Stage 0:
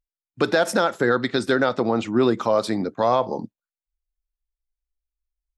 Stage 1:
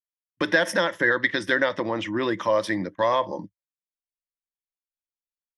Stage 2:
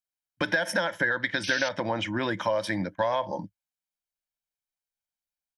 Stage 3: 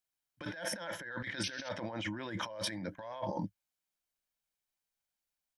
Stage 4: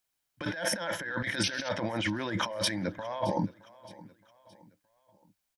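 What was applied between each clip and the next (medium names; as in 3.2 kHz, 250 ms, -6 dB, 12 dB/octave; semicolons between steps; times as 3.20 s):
peaking EQ 2.1 kHz +14 dB 0.86 oct; gate -32 dBFS, range -27 dB; rippled EQ curve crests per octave 1.2, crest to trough 11 dB; trim -6 dB
comb 1.3 ms, depth 53%; compression, threshold -22 dBFS, peak gain reduction 8.5 dB; painted sound noise, 1.43–1.69 s, 2.1–6.2 kHz -35 dBFS
compressor with a negative ratio -36 dBFS, ratio -1; trim -4.5 dB
feedback delay 619 ms, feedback 42%, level -20 dB; trim +7.5 dB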